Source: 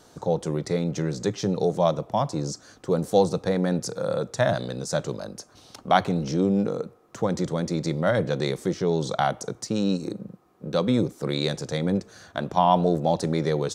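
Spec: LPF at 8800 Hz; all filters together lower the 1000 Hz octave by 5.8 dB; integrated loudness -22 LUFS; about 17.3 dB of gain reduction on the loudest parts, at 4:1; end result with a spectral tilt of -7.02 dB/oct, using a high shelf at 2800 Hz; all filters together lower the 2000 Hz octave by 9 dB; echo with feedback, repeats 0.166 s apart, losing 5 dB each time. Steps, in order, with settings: LPF 8800 Hz; bell 1000 Hz -6.5 dB; bell 2000 Hz -7.5 dB; high shelf 2800 Hz -5.5 dB; compressor 4:1, threshold -40 dBFS; feedback echo 0.166 s, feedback 56%, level -5 dB; gain +18.5 dB

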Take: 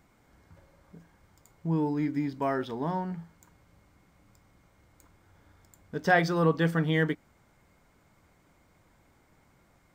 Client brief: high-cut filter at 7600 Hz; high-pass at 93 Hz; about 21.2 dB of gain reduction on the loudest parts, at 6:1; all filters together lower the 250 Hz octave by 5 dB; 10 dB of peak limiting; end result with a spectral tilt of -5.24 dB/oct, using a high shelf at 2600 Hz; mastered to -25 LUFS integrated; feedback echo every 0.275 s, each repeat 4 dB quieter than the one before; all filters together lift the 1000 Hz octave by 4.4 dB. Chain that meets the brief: HPF 93 Hz; LPF 7600 Hz; bell 250 Hz -8.5 dB; bell 1000 Hz +6 dB; high shelf 2600 Hz +6 dB; compressor 6:1, threshold -38 dBFS; limiter -36.5 dBFS; feedback echo 0.275 s, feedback 63%, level -4 dB; gain +22 dB

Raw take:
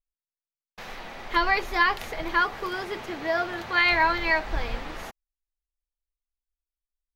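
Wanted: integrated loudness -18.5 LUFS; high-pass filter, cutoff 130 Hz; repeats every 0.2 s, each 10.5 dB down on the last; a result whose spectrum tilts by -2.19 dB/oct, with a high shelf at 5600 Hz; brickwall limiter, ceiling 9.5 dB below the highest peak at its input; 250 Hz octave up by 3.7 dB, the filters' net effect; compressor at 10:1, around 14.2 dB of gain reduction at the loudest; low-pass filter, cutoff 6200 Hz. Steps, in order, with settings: HPF 130 Hz; LPF 6200 Hz; bell 250 Hz +6.5 dB; high shelf 5600 Hz -6.5 dB; compressor 10:1, threshold -32 dBFS; limiter -29.5 dBFS; feedback echo 0.2 s, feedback 30%, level -10.5 dB; gain +20 dB

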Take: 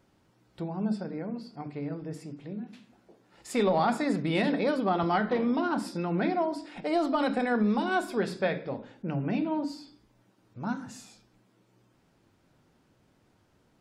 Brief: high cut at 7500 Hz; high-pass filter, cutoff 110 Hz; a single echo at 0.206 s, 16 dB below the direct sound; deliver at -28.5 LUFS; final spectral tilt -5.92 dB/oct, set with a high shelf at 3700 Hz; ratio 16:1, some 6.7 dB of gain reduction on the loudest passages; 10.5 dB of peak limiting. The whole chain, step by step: HPF 110 Hz; LPF 7500 Hz; high shelf 3700 Hz -6 dB; compressor 16:1, threshold -28 dBFS; limiter -31 dBFS; echo 0.206 s -16 dB; gain +11 dB

